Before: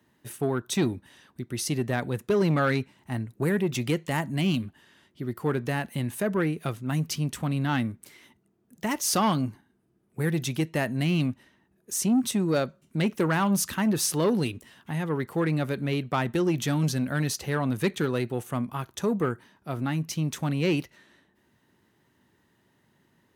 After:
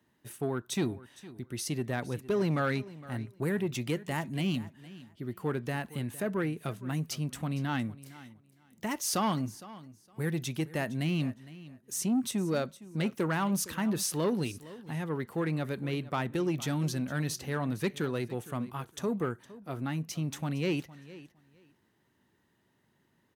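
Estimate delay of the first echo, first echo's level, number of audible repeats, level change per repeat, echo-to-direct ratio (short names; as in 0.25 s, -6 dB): 0.461 s, -18.0 dB, 2, -15.0 dB, -18.0 dB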